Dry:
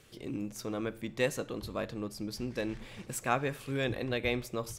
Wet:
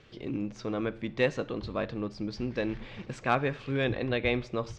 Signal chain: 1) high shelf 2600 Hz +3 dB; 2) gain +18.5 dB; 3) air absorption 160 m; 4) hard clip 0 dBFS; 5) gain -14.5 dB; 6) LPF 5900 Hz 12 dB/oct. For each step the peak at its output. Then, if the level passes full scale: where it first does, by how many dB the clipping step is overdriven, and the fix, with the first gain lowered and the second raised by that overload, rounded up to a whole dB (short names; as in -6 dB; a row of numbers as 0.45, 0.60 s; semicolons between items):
-13.5, +5.0, +3.5, 0.0, -14.5, -14.0 dBFS; step 2, 3.5 dB; step 2 +14.5 dB, step 5 -10.5 dB